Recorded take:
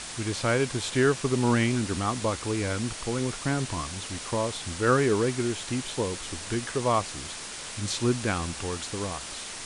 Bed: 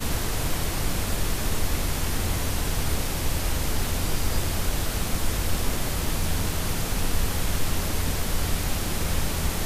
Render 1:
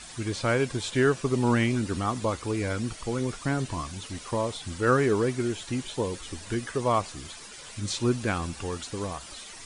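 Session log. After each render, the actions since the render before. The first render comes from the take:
broadband denoise 11 dB, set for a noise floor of −39 dBFS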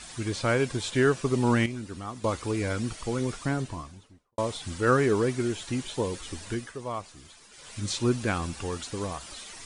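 0:01.66–0:02.24: clip gain −9 dB
0:03.33–0:04.38: fade out and dull
0:06.45–0:07.79: duck −9.5 dB, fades 0.30 s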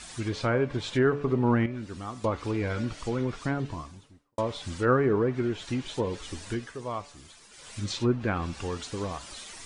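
hum removal 144 Hz, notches 37
treble cut that deepens with the level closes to 1,600 Hz, closed at −21.5 dBFS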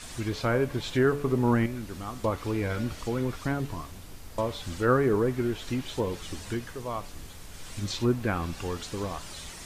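mix in bed −20 dB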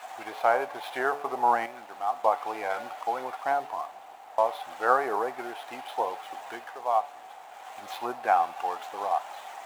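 running median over 9 samples
high-pass with resonance 760 Hz, resonance Q 9.3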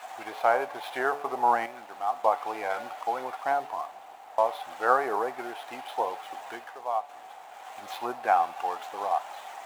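0:06.49–0:07.09: fade out, to −6 dB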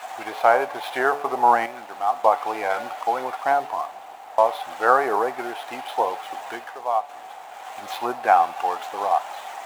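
level +6.5 dB
brickwall limiter −3 dBFS, peak gain reduction 2 dB

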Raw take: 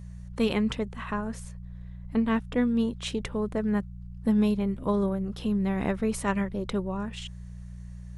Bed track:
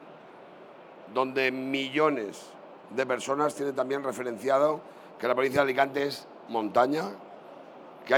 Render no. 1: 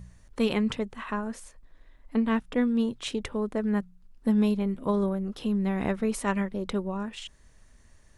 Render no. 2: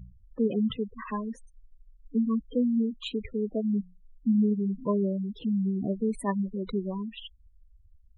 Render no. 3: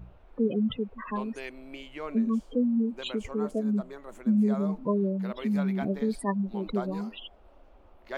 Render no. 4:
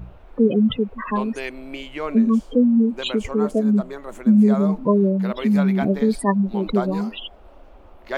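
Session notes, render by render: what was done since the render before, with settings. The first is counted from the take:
hum removal 60 Hz, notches 3
gate on every frequency bin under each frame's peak −10 dB strong
mix in bed track −14 dB
level +9.5 dB

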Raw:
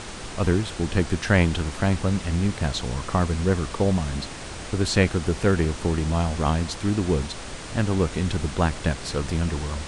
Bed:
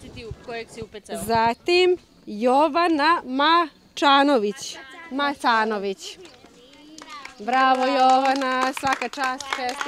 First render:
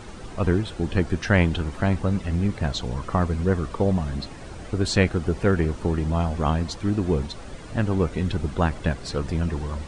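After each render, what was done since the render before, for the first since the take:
broadband denoise 11 dB, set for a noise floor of −36 dBFS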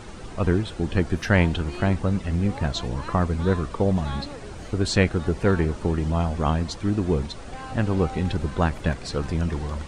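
mix in bed −21.5 dB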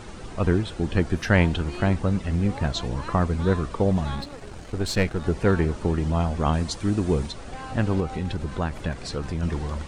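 0:04.15–0:05.24: gain on one half-wave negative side −7 dB
0:06.53–0:07.31: high-shelf EQ 7,600 Hz +10.5 dB
0:08.00–0:09.43: downward compressor 1.5 to 1, threshold −29 dBFS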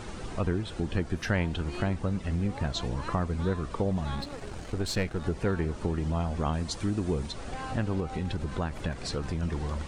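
downward compressor 2 to 1, threshold −30 dBFS, peak gain reduction 9.5 dB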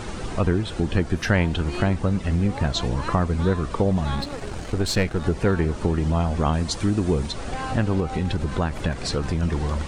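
level +7.5 dB

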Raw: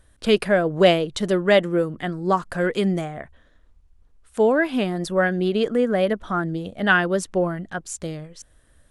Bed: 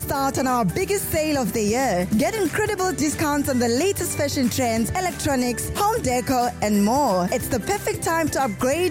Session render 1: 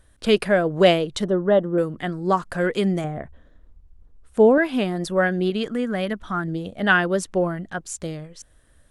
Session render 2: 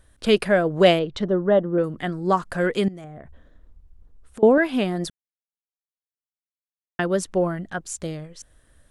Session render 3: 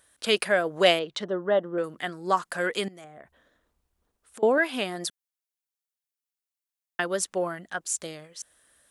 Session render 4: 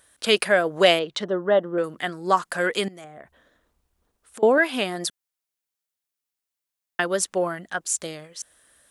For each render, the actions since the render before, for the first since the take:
0:01.24–0:01.78: moving average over 19 samples; 0:03.04–0:04.58: tilt shelving filter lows +6 dB, about 910 Hz; 0:05.50–0:06.48: parametric band 510 Hz −8 dB 1.2 octaves
0:00.99–0:01.84: high-frequency loss of the air 150 metres; 0:02.88–0:04.43: downward compressor 10 to 1, threshold −35 dBFS; 0:05.10–0:06.99: silence
high-pass filter 830 Hz 6 dB per octave; high-shelf EQ 5,800 Hz +6 dB
level +4 dB; brickwall limiter −3 dBFS, peak gain reduction 2 dB

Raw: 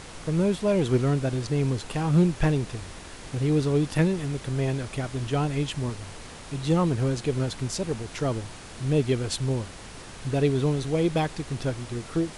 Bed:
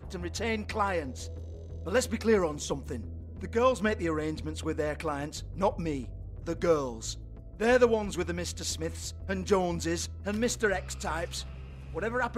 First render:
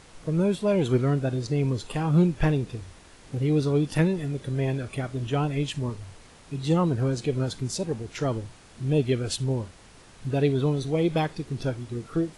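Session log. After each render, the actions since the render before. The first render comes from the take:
noise reduction from a noise print 9 dB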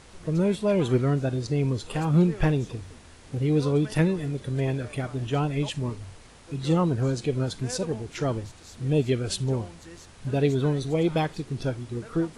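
mix in bed −15.5 dB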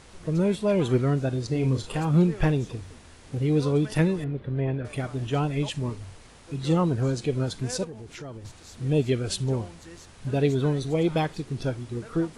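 0:01.48–0:01.95: double-tracking delay 38 ms −6.5 dB
0:04.24–0:04.85: high-frequency loss of the air 430 metres
0:07.84–0:08.45: downward compressor 3 to 1, threshold −39 dBFS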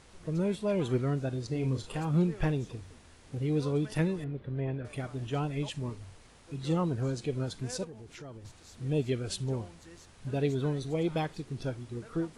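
level −6.5 dB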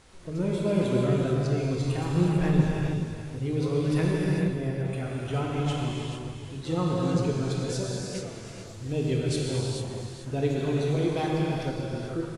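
single-tap delay 429 ms −10 dB
reverb whose tail is shaped and stops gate 480 ms flat, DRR −3.5 dB

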